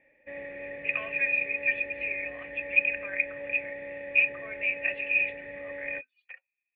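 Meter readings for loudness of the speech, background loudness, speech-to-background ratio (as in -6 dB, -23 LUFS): -28.0 LUFS, -40.0 LUFS, 12.0 dB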